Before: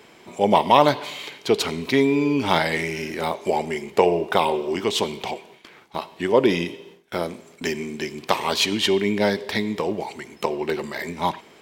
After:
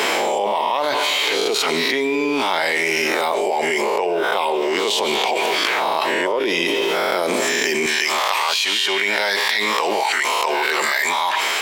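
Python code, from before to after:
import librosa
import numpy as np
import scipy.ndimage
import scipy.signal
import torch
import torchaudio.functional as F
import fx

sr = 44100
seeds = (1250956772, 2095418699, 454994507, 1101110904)

y = fx.spec_swells(x, sr, rise_s=0.46)
y = fx.highpass(y, sr, hz=fx.steps((0.0, 460.0), (7.86, 1000.0)), slope=12)
y = fx.env_flatten(y, sr, amount_pct=100)
y = y * librosa.db_to_amplitude(-9.0)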